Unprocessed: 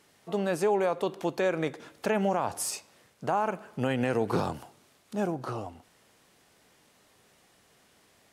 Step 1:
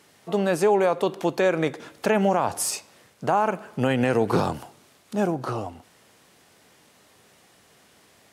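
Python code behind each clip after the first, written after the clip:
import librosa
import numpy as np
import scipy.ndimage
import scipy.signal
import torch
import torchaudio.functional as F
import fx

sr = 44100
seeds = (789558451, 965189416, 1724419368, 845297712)

y = scipy.signal.sosfilt(scipy.signal.butter(2, 56.0, 'highpass', fs=sr, output='sos'), x)
y = F.gain(torch.from_numpy(y), 6.0).numpy()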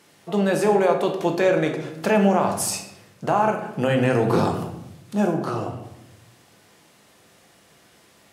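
y = fx.room_shoebox(x, sr, seeds[0], volume_m3=270.0, walls='mixed', distance_m=0.81)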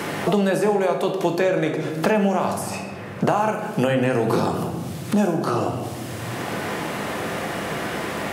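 y = fx.high_shelf(x, sr, hz=10000.0, db=5.5)
y = fx.band_squash(y, sr, depth_pct=100)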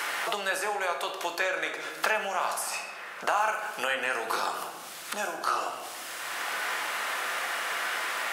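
y = scipy.signal.sosfilt(scipy.signal.butter(2, 1100.0, 'highpass', fs=sr, output='sos'), x)
y = fx.peak_eq(y, sr, hz=1400.0, db=3.5, octaves=0.38)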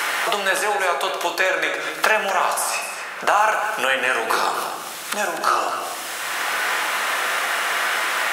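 y = fx.notch(x, sr, hz=4700.0, q=25.0)
y = y + 10.0 ** (-10.5 / 20.0) * np.pad(y, (int(246 * sr / 1000.0), 0))[:len(y)]
y = F.gain(torch.from_numpy(y), 9.0).numpy()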